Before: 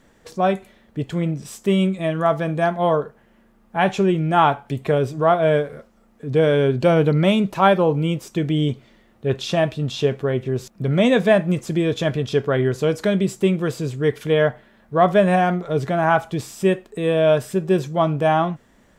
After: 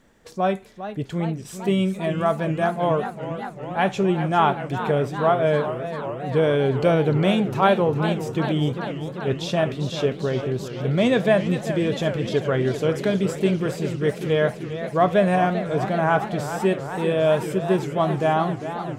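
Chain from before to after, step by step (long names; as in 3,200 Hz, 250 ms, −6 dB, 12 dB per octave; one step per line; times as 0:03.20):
feedback echo with a swinging delay time 397 ms, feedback 77%, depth 162 cents, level −11 dB
level −3 dB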